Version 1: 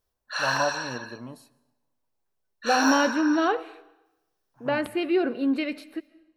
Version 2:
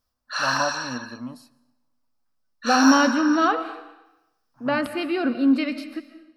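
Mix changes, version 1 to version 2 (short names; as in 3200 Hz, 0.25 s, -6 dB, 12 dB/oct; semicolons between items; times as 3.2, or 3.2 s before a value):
second voice: send +10.5 dB; master: add thirty-one-band EQ 250 Hz +9 dB, 400 Hz -11 dB, 1250 Hz +8 dB, 5000 Hz +9 dB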